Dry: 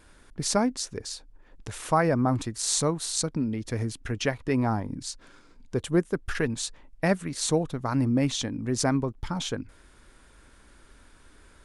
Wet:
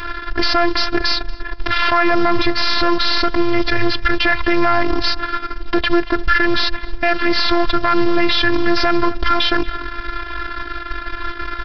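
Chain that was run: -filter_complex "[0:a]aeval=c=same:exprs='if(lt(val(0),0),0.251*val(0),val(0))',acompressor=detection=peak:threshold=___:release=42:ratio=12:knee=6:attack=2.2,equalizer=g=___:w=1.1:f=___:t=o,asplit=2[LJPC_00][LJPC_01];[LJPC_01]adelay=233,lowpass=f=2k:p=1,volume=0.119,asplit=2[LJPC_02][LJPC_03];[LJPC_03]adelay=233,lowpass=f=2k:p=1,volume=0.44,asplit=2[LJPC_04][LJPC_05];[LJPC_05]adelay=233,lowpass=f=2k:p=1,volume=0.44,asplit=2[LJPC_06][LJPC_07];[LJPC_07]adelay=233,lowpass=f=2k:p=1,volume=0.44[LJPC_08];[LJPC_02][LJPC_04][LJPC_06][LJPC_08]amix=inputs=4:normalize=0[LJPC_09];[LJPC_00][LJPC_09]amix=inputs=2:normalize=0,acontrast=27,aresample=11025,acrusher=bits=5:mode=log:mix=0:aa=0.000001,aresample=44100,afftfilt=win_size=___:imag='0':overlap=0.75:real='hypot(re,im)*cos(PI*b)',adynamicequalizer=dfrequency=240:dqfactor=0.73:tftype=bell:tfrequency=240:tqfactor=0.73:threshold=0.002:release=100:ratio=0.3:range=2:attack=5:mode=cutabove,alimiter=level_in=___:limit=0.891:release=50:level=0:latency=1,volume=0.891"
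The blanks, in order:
0.0158, 10, 1.5k, 512, 22.4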